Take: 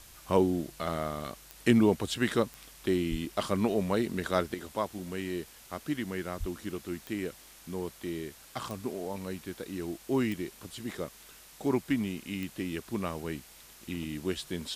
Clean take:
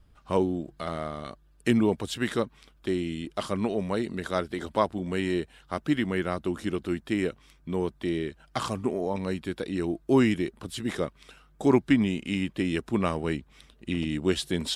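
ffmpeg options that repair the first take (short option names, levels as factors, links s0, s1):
-filter_complex "[0:a]adeclick=t=4,asplit=3[s0][s1][s2];[s0]afade=t=out:st=3.1:d=0.02[s3];[s1]highpass=f=140:w=0.5412,highpass=f=140:w=1.3066,afade=t=in:st=3.1:d=0.02,afade=t=out:st=3.22:d=0.02[s4];[s2]afade=t=in:st=3.22:d=0.02[s5];[s3][s4][s5]amix=inputs=3:normalize=0,asplit=3[s6][s7][s8];[s6]afade=t=out:st=6.39:d=0.02[s9];[s7]highpass=f=140:w=0.5412,highpass=f=140:w=1.3066,afade=t=in:st=6.39:d=0.02,afade=t=out:st=6.51:d=0.02[s10];[s8]afade=t=in:st=6.51:d=0.02[s11];[s9][s10][s11]amix=inputs=3:normalize=0,afwtdn=0.0025,asetnsamples=n=441:p=0,asendcmd='4.54 volume volume 7.5dB',volume=1"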